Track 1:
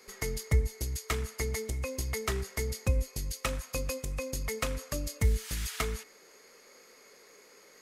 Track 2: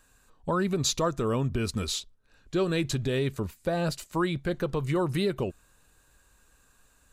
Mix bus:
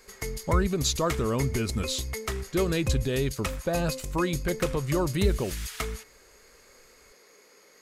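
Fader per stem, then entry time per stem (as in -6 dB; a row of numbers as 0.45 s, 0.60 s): 0.0 dB, 0.0 dB; 0.00 s, 0.00 s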